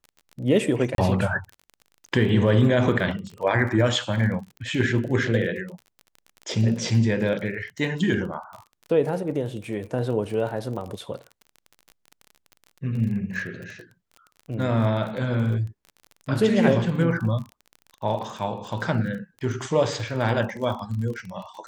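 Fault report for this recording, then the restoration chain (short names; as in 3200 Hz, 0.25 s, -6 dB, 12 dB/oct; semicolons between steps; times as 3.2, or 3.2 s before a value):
crackle 32/s -33 dBFS
0.95–0.98 gap 32 ms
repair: de-click; interpolate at 0.95, 32 ms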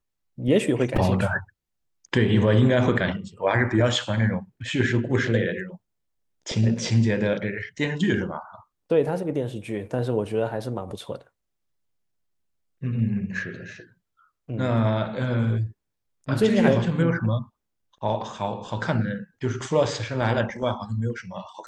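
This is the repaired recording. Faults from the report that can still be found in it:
none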